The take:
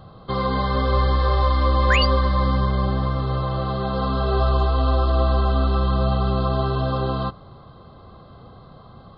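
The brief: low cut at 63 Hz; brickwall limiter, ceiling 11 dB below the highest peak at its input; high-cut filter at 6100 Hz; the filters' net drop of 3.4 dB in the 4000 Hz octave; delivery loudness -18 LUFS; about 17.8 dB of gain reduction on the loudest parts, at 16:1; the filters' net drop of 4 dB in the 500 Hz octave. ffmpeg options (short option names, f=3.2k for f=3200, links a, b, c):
-af "highpass=63,lowpass=6.1k,equalizer=f=500:t=o:g=-5,equalizer=f=4k:t=o:g=-4,acompressor=threshold=-35dB:ratio=16,volume=28.5dB,alimiter=limit=-9dB:level=0:latency=1"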